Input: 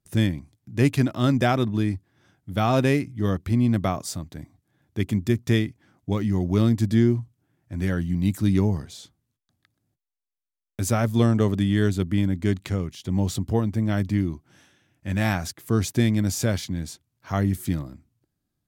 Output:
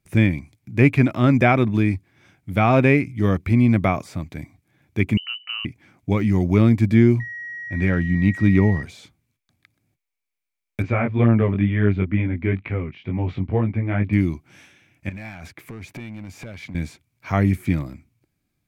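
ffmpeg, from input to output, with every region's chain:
-filter_complex "[0:a]asettb=1/sr,asplit=3[s0][s1][s2];[s0]atrim=end=5.174[s3];[s1]atrim=start=5.17:end=5.65,asetpts=PTS-STARTPTS,afade=t=in:d=0.004:c=qsin,afade=t=out:st=0.476:d=0.004:c=qsin,lowpass=f=2600:t=q:w=0.5098,lowpass=f=2600:t=q:w=0.6013,lowpass=f=2600:t=q:w=0.9,lowpass=f=2600:t=q:w=2.563,afreqshift=-3100,highpass=f=1200:w=0.5412,highpass=f=1200:w=1.3066,acompressor=threshold=0.0355:ratio=3:attack=3.2:release=140:knee=1:detection=peak[s4];[s2]atrim=start=5.646[s5];[s3][s4]acrossfade=d=0.004:c1=hsin:c2=qsin[s6];[s6][s5]acrossfade=d=0.004:c1=qsin:c2=hsin,asettb=1/sr,asplit=3[s7][s8][s9];[s7]atrim=end=7.204[s10];[s8]atrim=start=7.2:end=8.83,asetpts=PTS-STARTPTS,afade=t=in:d=0.004:c=qsin,afade=t=out:st=1.626:d=0.004:c=qsin,bandreject=f=4300:w=15,aeval=exprs='val(0)+0.0141*sin(2*PI*1900*n/s)':c=same,adynamicsmooth=sensitivity=4.5:basefreq=3600[s11];[s9]atrim=start=8.826[s12];[s10][s11]acrossfade=d=0.004:c1=hsin:c2=qsin[s13];[s13][s12]acrossfade=d=0.004:c1=qsin:c2=hsin,asettb=1/sr,asplit=3[s14][s15][s16];[s14]atrim=end=10.824[s17];[s15]atrim=start=10.82:end=14.13,asetpts=PTS-STARTPTS,afade=t=in:d=0.004:c=qsin,afade=t=out:st=3.306:d=0.004:c=qsin,lowpass=f=2600:w=0.5412,lowpass=f=2600:w=1.3066,flanger=delay=17.5:depth=4.2:speed=2.1[s18];[s16]atrim=start=14.126[s19];[s17][s18]acrossfade=d=0.004:c1=hsin:c2=qsin[s20];[s20][s19]acrossfade=d=0.004:c1=qsin:c2=hsin,asettb=1/sr,asplit=3[s21][s22][s23];[s21]atrim=end=15.094[s24];[s22]atrim=start=15.09:end=16.75,asetpts=PTS-STARTPTS,afade=t=in:d=0.004:c=qsin,afade=t=out:st=1.656:d=0.004:c=qsin,bass=f=250:g=-2,treble=f=4000:g=-9,acompressor=threshold=0.0158:ratio=6:attack=3.2:release=140:knee=1:detection=peak,volume=50.1,asoftclip=hard,volume=0.02[s25];[s23]atrim=start=16.746[s26];[s24][s25]acrossfade=d=0.004:c1=hsin:c2=qsin[s27];[s27][s26]acrossfade=d=0.004:c1=qsin:c2=hsin,acrossover=split=2500[s28][s29];[s29]acompressor=threshold=0.00282:ratio=4:attack=1:release=60[s30];[s28][s30]amix=inputs=2:normalize=0,equalizer=f=2300:w=5.1:g=14.5,volume=1.68"

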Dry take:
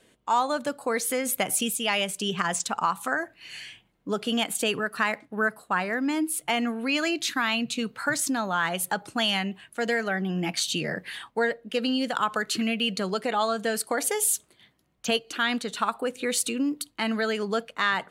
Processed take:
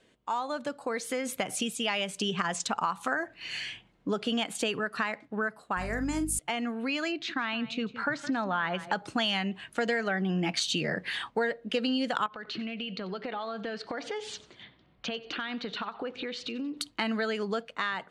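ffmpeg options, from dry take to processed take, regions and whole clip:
-filter_complex "[0:a]asettb=1/sr,asplit=3[s0][s1][s2];[s0]atrim=end=5.774[s3];[s1]atrim=start=5.77:end=6.39,asetpts=PTS-STARTPTS,afade=t=in:d=0.004:c=qsin,afade=t=out:st=0.616:d=0.004:c=qsin,highshelf=f=5200:t=q:w=1.5:g=13,asplit=2[s4][s5];[s5]adelay=42,volume=0.335[s6];[s4][s6]amix=inputs=2:normalize=0,atrim=end_sample=27342,aeval=exprs='val(0)+0.0251*(sin(2*PI*50*n/s)+sin(2*PI*2*50*n/s)/2+sin(2*PI*3*50*n/s)/3+sin(2*PI*4*50*n/s)/4+sin(2*PI*5*50*n/s)/5)':c=same[s7];[s2]atrim=start=6.386[s8];[s3][s7]acrossfade=d=0.004:c1=hsin:c2=qsin[s9];[s9][s8]acrossfade=d=0.004:c1=qsin:c2=hsin,asettb=1/sr,asplit=3[s10][s11][s12];[s10]atrim=end=7.124[s13];[s11]atrim=start=7.12:end=8.92,asetpts=PTS-STARTPTS,afade=t=in:d=0.004:c=qsin,afade=t=out:st=1.796:d=0.004:c=qsin,lowpass=3300,aecho=1:1:164:0.126,atrim=end_sample=79380[s14];[s12]atrim=start=8.916[s15];[s13][s14]acrossfade=d=0.004:c1=hsin:c2=qsin[s16];[s16][s15]acrossfade=d=0.004:c1=qsin:c2=hsin,asettb=1/sr,asplit=3[s17][s18][s19];[s17]atrim=end=12.264[s20];[s18]atrim=start=12.26:end=16.77,asetpts=PTS-STARTPTS,afade=t=in:d=0.004:c=qsin,afade=t=out:st=4.506:d=0.004:c=qsin,lowpass=f=4300:w=0.5412,lowpass=f=4300:w=1.3066,acompressor=threshold=0.01:ratio=4:attack=3.2:release=140:knee=1:detection=peak,aecho=1:1:92|184|276:0.112|0.0438|0.0171,atrim=end_sample=198891[s21];[s19]atrim=start=16.766[s22];[s20][s21]acrossfade=d=0.004:c1=hsin:c2=qsin[s23];[s23][s22]acrossfade=d=0.004:c1=qsin:c2=hsin,dynaudnorm=f=450:g=7:m=3.76,lowpass=6200,acompressor=threshold=0.0501:ratio=2.5,volume=0.668"

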